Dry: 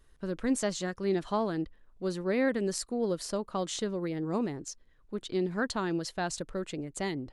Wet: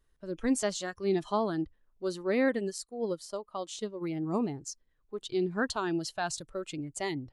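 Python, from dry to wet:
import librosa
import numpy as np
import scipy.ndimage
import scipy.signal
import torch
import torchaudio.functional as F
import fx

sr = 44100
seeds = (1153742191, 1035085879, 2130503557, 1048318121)

y = fx.noise_reduce_blind(x, sr, reduce_db=11)
y = fx.upward_expand(y, sr, threshold_db=-42.0, expansion=1.5, at=(2.58, 4.0), fade=0.02)
y = y * 10.0 ** (1.0 / 20.0)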